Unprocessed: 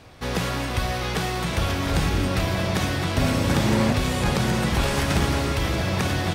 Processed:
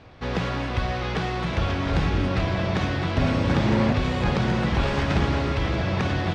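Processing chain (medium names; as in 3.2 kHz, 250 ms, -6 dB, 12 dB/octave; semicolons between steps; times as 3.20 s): distance through air 170 m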